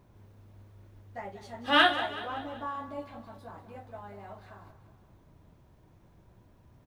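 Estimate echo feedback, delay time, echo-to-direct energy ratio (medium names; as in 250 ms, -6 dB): 51%, 189 ms, -11.5 dB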